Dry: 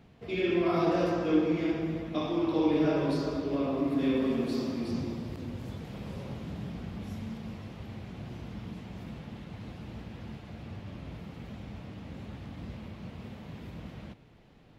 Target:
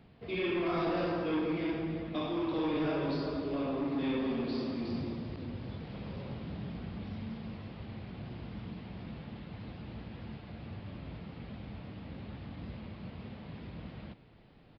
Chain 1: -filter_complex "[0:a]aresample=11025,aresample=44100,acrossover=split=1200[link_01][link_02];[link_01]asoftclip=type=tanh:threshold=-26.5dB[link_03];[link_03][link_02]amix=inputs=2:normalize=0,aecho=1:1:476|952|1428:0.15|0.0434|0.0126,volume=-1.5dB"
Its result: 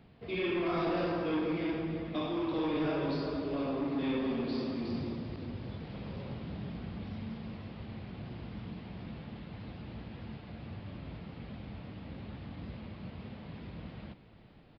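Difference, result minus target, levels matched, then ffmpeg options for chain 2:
echo-to-direct +11 dB
-filter_complex "[0:a]aresample=11025,aresample=44100,acrossover=split=1200[link_01][link_02];[link_01]asoftclip=type=tanh:threshold=-26.5dB[link_03];[link_03][link_02]amix=inputs=2:normalize=0,aecho=1:1:476|952:0.0422|0.0122,volume=-1.5dB"

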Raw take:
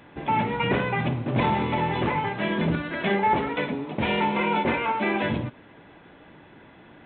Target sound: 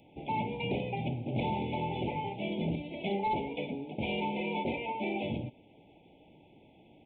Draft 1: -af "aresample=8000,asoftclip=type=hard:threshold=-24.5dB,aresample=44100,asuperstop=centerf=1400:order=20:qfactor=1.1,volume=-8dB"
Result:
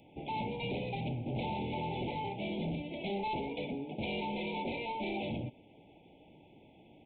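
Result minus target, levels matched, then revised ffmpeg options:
hard clipping: distortion +16 dB
-af "aresample=8000,asoftclip=type=hard:threshold=-16.5dB,aresample=44100,asuperstop=centerf=1400:order=20:qfactor=1.1,volume=-8dB"

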